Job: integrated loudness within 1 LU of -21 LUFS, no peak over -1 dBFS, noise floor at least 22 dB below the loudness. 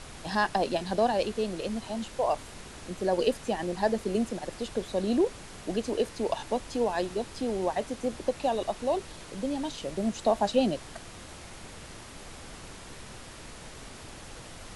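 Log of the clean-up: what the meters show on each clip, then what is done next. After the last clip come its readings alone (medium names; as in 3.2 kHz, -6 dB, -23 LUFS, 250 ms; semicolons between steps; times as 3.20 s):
noise floor -46 dBFS; noise floor target -52 dBFS; loudness -30.0 LUFS; peak level -12.5 dBFS; loudness target -21.0 LUFS
-> noise print and reduce 6 dB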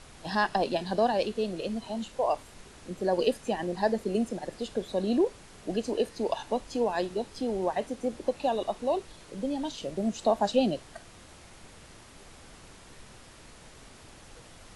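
noise floor -52 dBFS; loudness -30.0 LUFS; peak level -12.5 dBFS; loudness target -21.0 LUFS
-> trim +9 dB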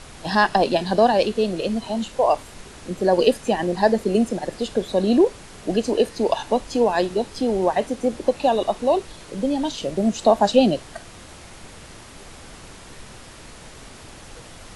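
loudness -21.0 LUFS; peak level -3.5 dBFS; noise floor -43 dBFS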